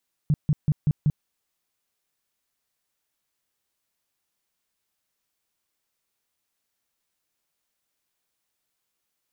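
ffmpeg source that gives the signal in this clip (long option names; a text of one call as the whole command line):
ffmpeg -f lavfi -i "aevalsrc='0.158*sin(2*PI*150*mod(t,0.19))*lt(mod(t,0.19),6/150)':duration=0.95:sample_rate=44100" out.wav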